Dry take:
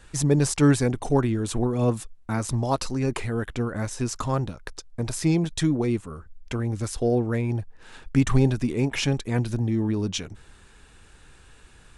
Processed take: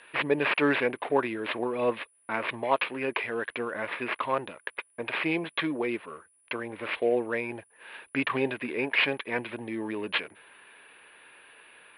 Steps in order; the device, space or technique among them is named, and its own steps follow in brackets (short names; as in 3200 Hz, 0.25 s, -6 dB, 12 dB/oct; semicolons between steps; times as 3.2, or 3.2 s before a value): toy sound module (decimation joined by straight lines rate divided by 6×; pulse-width modulation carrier 9800 Hz; speaker cabinet 670–3600 Hz, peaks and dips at 770 Hz -8 dB, 1300 Hz -7 dB, 2500 Hz +5 dB); gain +7 dB